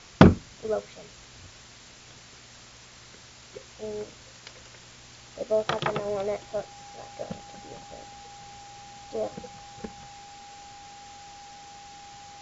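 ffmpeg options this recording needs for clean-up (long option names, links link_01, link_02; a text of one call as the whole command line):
ffmpeg -i in.wav -af "bandreject=frequency=810:width=30,afwtdn=0.005" out.wav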